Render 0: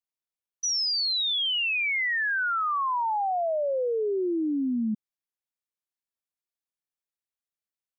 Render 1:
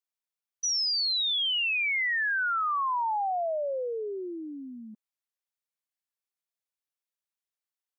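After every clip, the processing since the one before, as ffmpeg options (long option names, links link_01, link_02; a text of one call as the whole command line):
ffmpeg -i in.wav -af "highpass=550,volume=-1dB" out.wav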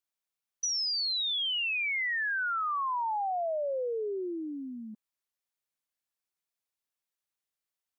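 ffmpeg -i in.wav -af "acompressor=threshold=-31dB:ratio=6,volume=1.5dB" out.wav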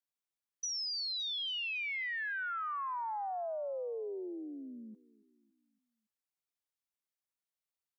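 ffmpeg -i in.wav -af "aecho=1:1:281|562|843|1124:0.0841|0.0429|0.0219|0.0112,volume=-6.5dB" out.wav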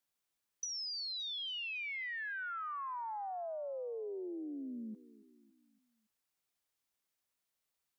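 ffmpeg -i in.wav -af "acompressor=threshold=-47dB:ratio=6,volume=6.5dB" out.wav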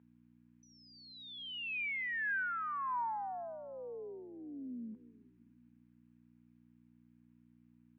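ffmpeg -i in.wav -af "aeval=exprs='val(0)+0.002*(sin(2*PI*60*n/s)+sin(2*PI*2*60*n/s)/2+sin(2*PI*3*60*n/s)/3+sin(2*PI*4*60*n/s)/4+sin(2*PI*5*60*n/s)/5)':channel_layout=same,highpass=230,equalizer=frequency=240:width_type=q:width=4:gain=4,equalizer=frequency=350:width_type=q:width=4:gain=-9,equalizer=frequency=580:width_type=q:width=4:gain=-7,equalizer=frequency=960:width_type=q:width=4:gain=6,equalizer=frequency=1600:width_type=q:width=4:gain=6,equalizer=frequency=2400:width_type=q:width=4:gain=4,lowpass=frequency=2800:width=0.5412,lowpass=frequency=2800:width=1.3066" out.wav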